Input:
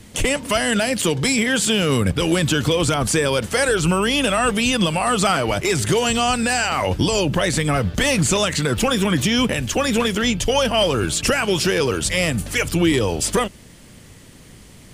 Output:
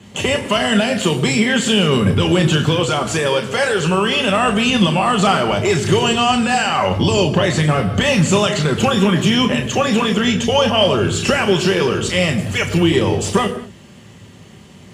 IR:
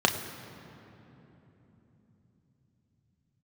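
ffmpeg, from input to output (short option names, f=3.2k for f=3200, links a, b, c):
-filter_complex "[0:a]asettb=1/sr,asplit=3[a][b][c];[a]atrim=end=2.794[d];[b]atrim=start=2.79:end=4.28,asetpts=PTS-STARTPTS,afade=t=in:d=0.004:c=qsin,afade=t=out:st=1.486:d=0.004:c=qsin,lowshelf=f=250:g=-7[e];[c]atrim=start=4.276[f];[d][e]acrossfade=d=0.004:c1=hsin:c2=qsin[g];[g][f]acrossfade=d=0.004:c1=qsin:c2=hsin[h];[1:a]atrim=start_sample=2205,afade=t=out:st=0.28:d=0.01,atrim=end_sample=12789[i];[h][i]afir=irnorm=-1:irlink=0,volume=-11dB"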